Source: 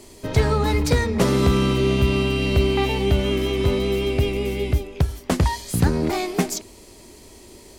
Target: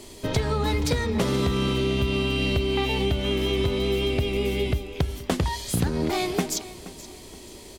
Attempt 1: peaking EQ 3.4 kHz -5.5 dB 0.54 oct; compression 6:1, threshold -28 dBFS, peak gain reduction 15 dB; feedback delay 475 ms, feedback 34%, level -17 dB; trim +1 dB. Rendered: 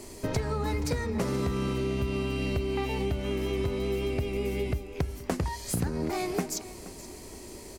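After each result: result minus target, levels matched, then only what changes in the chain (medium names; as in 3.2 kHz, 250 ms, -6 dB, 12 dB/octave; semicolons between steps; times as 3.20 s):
4 kHz band -6.0 dB; compression: peak gain reduction +5.5 dB
change: peaking EQ 3.4 kHz +5 dB 0.54 oct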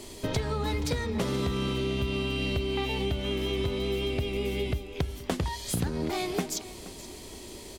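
compression: peak gain reduction +5.5 dB
change: compression 6:1, threshold -21.5 dBFS, peak gain reduction 9.5 dB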